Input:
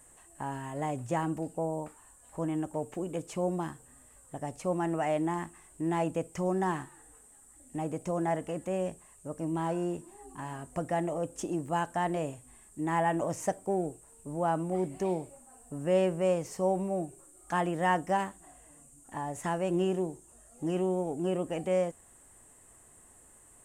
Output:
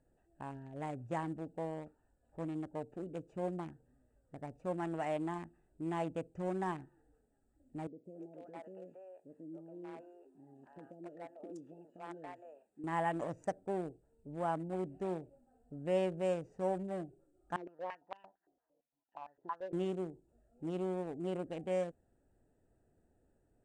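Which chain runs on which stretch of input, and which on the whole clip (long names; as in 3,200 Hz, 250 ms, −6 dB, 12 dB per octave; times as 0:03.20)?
0:07.87–0:12.84: high-pass filter 300 Hz + downward compressor 2 to 1, threshold −36 dBFS + three-band delay without the direct sound lows, highs, mids 170/280 ms, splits 510/3,400 Hz
0:17.56–0:19.73: parametric band 1,000 Hz +13 dB 0.29 octaves + band-pass on a step sequencer 8.8 Hz 390–3,000 Hz
whole clip: adaptive Wiener filter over 41 samples; low-pass filter 8,100 Hz 12 dB per octave; low-shelf EQ 350 Hz −3 dB; level −5 dB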